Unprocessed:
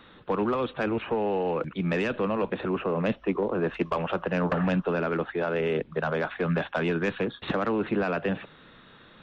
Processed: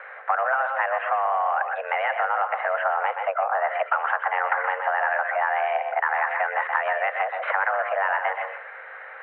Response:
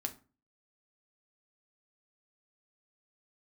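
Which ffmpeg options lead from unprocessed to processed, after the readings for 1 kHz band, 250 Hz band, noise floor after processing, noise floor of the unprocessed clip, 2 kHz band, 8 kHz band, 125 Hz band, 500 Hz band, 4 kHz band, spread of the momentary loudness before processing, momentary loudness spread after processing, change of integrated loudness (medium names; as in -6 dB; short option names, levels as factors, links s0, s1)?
+11.0 dB, under -40 dB, -41 dBFS, -53 dBFS, +9.5 dB, no reading, under -40 dB, -1.0 dB, -3.5 dB, 3 LU, 3 LU, +4.0 dB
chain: -filter_complex "[0:a]equalizer=f=1200:t=o:w=1.6:g=8.5,asplit=2[s0][s1];[1:a]atrim=start_sample=2205,adelay=123[s2];[s1][s2]afir=irnorm=-1:irlink=0,volume=0.422[s3];[s0][s3]amix=inputs=2:normalize=0,acompressor=threshold=0.0316:ratio=3,aeval=exprs='val(0)+0.00891*(sin(2*PI*50*n/s)+sin(2*PI*2*50*n/s)/2+sin(2*PI*3*50*n/s)/3+sin(2*PI*4*50*n/s)/4+sin(2*PI*5*50*n/s)/5)':c=same,highpass=f=290:t=q:w=0.5412,highpass=f=290:t=q:w=1.307,lowpass=f=2100:t=q:w=0.5176,lowpass=f=2100:t=q:w=0.7071,lowpass=f=2100:t=q:w=1.932,afreqshift=280,volume=2.51"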